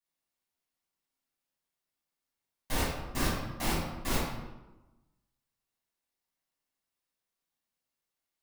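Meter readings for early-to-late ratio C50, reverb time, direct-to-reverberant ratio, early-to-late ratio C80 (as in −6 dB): 0.5 dB, 1.1 s, −10.5 dB, 3.0 dB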